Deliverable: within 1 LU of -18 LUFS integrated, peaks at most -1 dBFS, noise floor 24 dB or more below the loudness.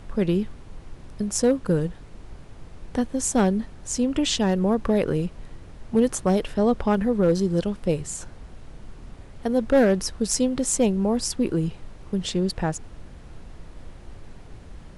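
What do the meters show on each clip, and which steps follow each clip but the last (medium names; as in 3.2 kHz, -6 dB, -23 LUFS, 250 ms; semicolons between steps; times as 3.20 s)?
clipped samples 0.3%; clipping level -11.5 dBFS; noise floor -45 dBFS; noise floor target -48 dBFS; loudness -24.0 LUFS; peak level -11.5 dBFS; loudness target -18.0 LUFS
-> clip repair -11.5 dBFS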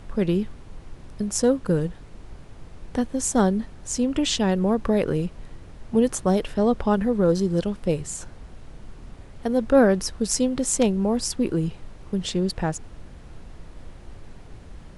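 clipped samples 0.0%; noise floor -45 dBFS; noise floor target -48 dBFS
-> noise print and reduce 6 dB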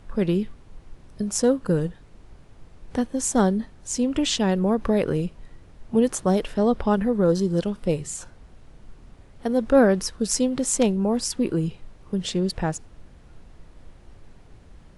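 noise floor -50 dBFS; loudness -23.5 LUFS; peak level -5.0 dBFS; loudness target -18.0 LUFS
-> trim +5.5 dB; peak limiter -1 dBFS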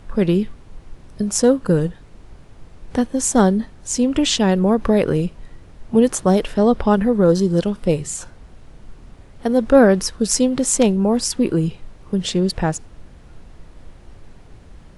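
loudness -18.0 LUFS; peak level -1.0 dBFS; noise floor -45 dBFS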